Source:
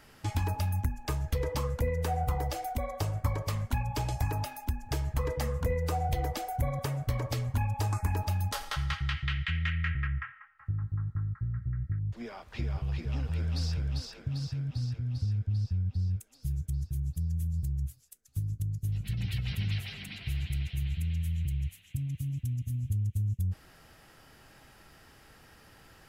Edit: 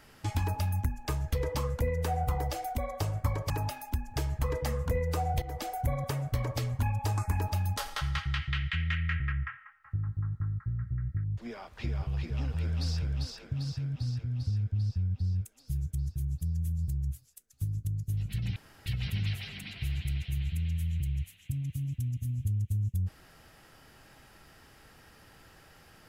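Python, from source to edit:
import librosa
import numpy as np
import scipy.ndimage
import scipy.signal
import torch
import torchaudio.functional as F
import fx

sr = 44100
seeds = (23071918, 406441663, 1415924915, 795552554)

y = fx.edit(x, sr, fx.cut(start_s=3.5, length_s=0.75),
    fx.fade_in_from(start_s=6.17, length_s=0.25, floor_db=-13.5),
    fx.insert_room_tone(at_s=19.31, length_s=0.3), tone=tone)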